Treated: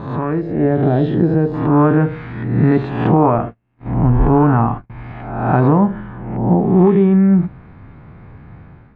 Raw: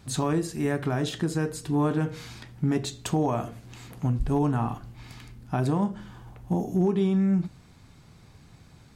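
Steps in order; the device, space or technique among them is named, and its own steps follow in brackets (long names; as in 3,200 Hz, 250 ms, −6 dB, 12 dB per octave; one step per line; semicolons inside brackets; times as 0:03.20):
peak hold with a rise ahead of every peak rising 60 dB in 0.97 s
0:00.41–0:01.54: flat-topped bell 1,600 Hz −10.5 dB
0:03.38–0:04.90: noise gate −34 dBFS, range −35 dB
action camera in a waterproof case (low-pass filter 2,000 Hz 24 dB per octave; automatic gain control gain up to 8.5 dB; level +3 dB; AAC 64 kbit/s 32,000 Hz)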